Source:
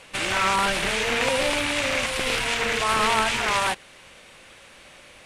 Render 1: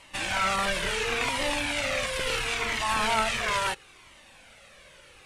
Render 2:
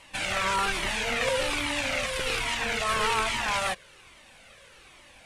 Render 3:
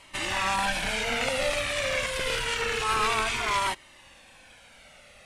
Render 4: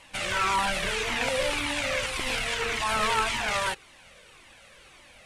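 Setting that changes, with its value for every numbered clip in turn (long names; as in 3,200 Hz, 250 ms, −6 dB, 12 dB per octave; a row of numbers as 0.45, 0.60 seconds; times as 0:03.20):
flanger whose copies keep moving one way, speed: 0.73, 1.2, 0.27, 1.8 Hertz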